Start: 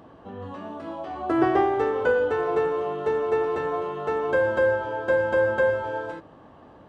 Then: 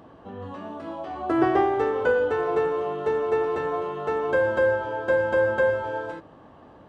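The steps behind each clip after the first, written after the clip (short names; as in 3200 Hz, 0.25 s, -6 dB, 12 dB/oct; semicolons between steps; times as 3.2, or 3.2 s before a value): nothing audible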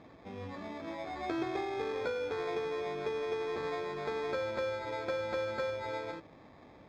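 compressor, threshold -26 dBFS, peak gain reduction 10.5 dB; sample-rate reducer 2900 Hz, jitter 0%; air absorption 200 m; gain -5.5 dB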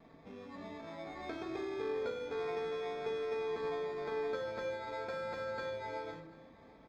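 vibrato 0.43 Hz 13 cents; echo 0.739 s -22.5 dB; shoebox room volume 640 m³, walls furnished, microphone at 1.6 m; gain -6.5 dB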